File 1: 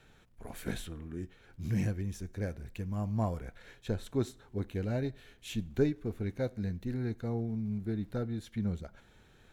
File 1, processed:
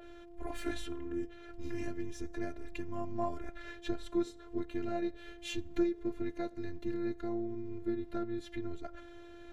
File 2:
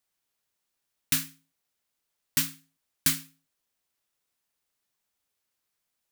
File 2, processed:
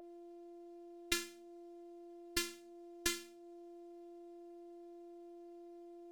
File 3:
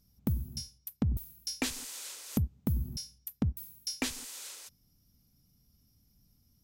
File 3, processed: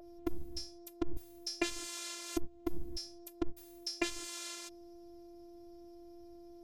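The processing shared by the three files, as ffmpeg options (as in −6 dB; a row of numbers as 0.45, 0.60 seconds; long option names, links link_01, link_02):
-af "aeval=exprs='val(0)+0.00501*sin(2*PI*500*n/s)':channel_layout=same,adynamicequalizer=threshold=0.00251:dfrequency=6800:dqfactor=0.89:tfrequency=6800:tqfactor=0.89:attack=5:release=100:ratio=0.375:range=1.5:mode=boostabove:tftype=bell,acompressor=threshold=-42dB:ratio=2,afftfilt=real='hypot(re,im)*cos(PI*b)':imag='0':win_size=512:overlap=0.75,aemphasis=mode=reproduction:type=50fm,volume=10.5dB"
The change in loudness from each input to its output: −3.0, −17.0, −5.0 LU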